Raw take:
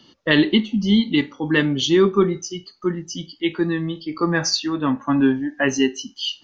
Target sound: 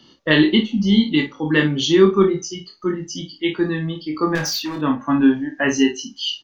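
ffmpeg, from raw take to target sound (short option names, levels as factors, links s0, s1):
-filter_complex "[0:a]asettb=1/sr,asplit=3[s0][s1][s2];[s0]atrim=end=4.354[s3];[s1]atrim=start=4.35:end=4.76,asetpts=PTS-STARTPTS,afade=t=in:d=0.004:c=qsin,afade=t=out:st=0.406:d=0.004:c=qsin,volume=12.6,asoftclip=hard,volume=0.0794[s4];[s2]atrim=start=4.756[s5];[s3][s4]acrossfade=d=0.004:c1=hsin:c2=qsin[s6];[s6][s5]acrossfade=d=0.004:c1=qsin:c2=hsin,asplit=2[s7][s8];[s8]aecho=0:1:26|55:0.562|0.299[s9];[s7][s9]amix=inputs=2:normalize=0"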